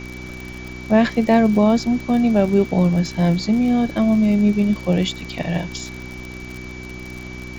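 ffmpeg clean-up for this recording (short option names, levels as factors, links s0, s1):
-af "adeclick=t=4,bandreject=f=62.2:t=h:w=4,bandreject=f=124.4:t=h:w=4,bandreject=f=186.6:t=h:w=4,bandreject=f=248.8:t=h:w=4,bandreject=f=311:t=h:w=4,bandreject=f=373.2:t=h:w=4,bandreject=f=2300:w=30,afftdn=nr=30:nf=-34"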